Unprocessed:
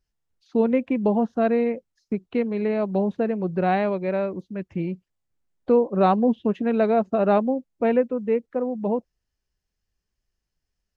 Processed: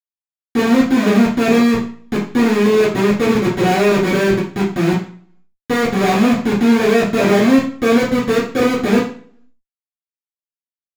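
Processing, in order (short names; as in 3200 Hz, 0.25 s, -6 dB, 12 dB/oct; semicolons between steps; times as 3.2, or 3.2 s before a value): 1.75–3.51 HPF 160 Hz 24 dB/oct; Schmitt trigger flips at -26.5 dBFS; reverb RT60 0.45 s, pre-delay 3 ms, DRR -9.5 dB; gain -6 dB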